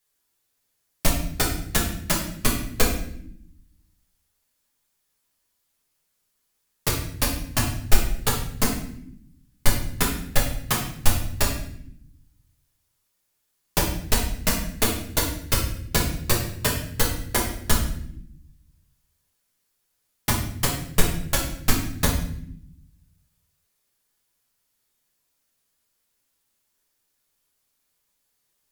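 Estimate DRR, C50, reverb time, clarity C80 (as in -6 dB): -3.5 dB, 5.0 dB, no single decay rate, 8.5 dB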